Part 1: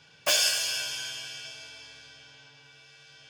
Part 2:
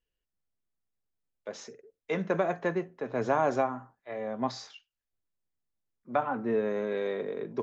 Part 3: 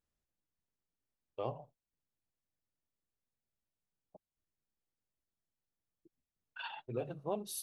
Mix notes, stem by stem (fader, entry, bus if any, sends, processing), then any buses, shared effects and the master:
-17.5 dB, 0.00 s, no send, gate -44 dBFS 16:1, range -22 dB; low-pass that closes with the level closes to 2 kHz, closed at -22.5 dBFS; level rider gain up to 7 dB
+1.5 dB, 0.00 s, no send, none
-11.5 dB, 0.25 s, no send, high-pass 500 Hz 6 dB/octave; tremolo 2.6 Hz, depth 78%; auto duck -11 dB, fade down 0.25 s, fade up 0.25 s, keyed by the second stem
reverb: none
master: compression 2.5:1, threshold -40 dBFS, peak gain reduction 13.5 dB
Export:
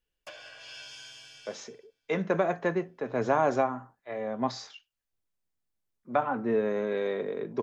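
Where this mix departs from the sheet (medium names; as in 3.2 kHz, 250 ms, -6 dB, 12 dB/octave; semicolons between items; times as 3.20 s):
stem 3 -11.5 dB -> -18.0 dB; master: missing compression 2.5:1, threshold -40 dBFS, peak gain reduction 13.5 dB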